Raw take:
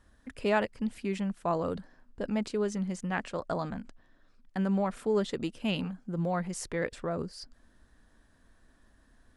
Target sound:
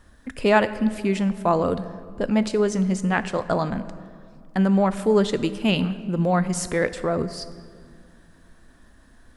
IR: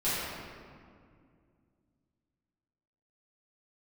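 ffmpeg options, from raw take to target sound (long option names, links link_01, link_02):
-filter_complex "[0:a]asplit=2[link_01][link_02];[1:a]atrim=start_sample=2205,highshelf=frequency=7800:gain=11[link_03];[link_02][link_03]afir=irnorm=-1:irlink=0,volume=-23dB[link_04];[link_01][link_04]amix=inputs=2:normalize=0,volume=9dB"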